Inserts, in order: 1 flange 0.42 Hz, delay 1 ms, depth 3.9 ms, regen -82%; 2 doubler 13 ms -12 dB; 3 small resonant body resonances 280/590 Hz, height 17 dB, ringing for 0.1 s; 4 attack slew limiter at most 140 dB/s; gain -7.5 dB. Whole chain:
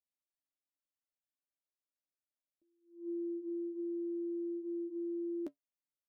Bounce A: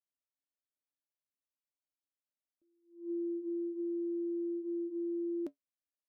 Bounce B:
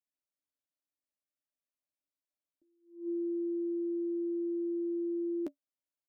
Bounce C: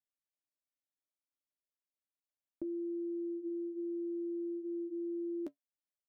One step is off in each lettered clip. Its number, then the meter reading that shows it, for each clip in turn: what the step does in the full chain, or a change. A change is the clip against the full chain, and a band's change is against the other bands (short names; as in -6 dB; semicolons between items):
2, loudness change +2.5 LU; 1, loudness change +4.5 LU; 4, crest factor change +2.0 dB